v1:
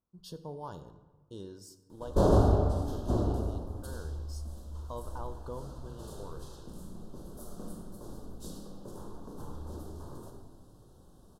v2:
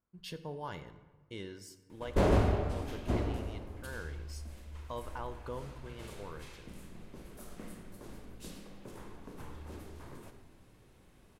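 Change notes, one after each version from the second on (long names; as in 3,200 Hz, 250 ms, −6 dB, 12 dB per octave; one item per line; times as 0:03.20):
background: send −7.5 dB
master: remove Butterworth band-reject 2,200 Hz, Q 0.83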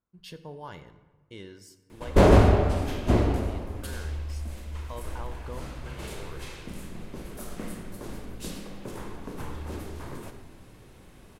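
background +10.0 dB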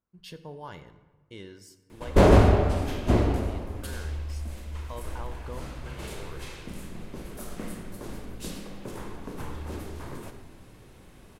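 nothing changed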